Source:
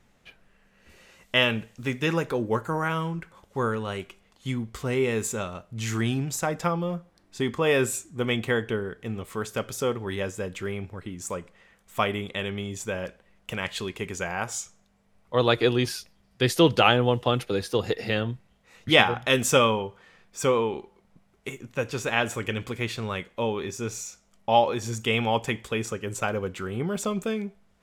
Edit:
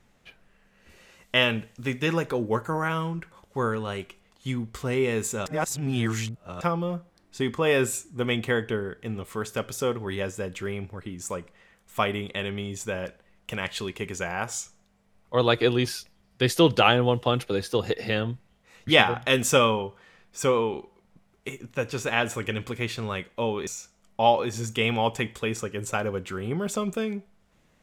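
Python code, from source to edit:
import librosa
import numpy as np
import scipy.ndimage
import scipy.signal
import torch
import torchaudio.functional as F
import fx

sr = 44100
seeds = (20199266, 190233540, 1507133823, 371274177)

y = fx.edit(x, sr, fx.reverse_span(start_s=5.46, length_s=1.15),
    fx.cut(start_s=23.67, length_s=0.29), tone=tone)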